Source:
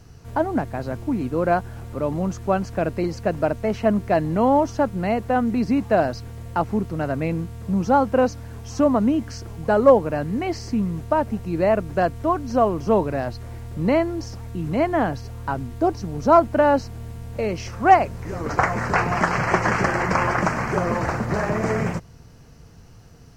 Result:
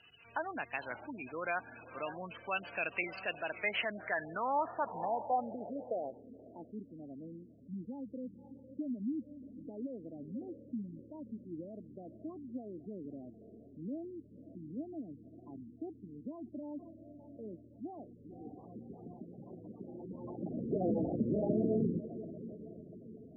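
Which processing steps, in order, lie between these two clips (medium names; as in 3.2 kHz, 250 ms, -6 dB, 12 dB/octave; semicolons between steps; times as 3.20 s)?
5.56–7.71 s: bass shelf 450 Hz -4 dB; on a send: echo that smears into a reverb 560 ms, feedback 52%, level -15 dB; on the sum: peak limiter -14 dBFS, peak gain reduction 11.5 dB; low-pass sweep 2.7 kHz -> 270 Hz, 3.55–6.80 s; spectral gate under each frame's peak -25 dB strong; band-pass sweep 3.3 kHz -> 740 Hz, 19.88–20.86 s; warped record 45 rpm, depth 100 cents; trim +7.5 dB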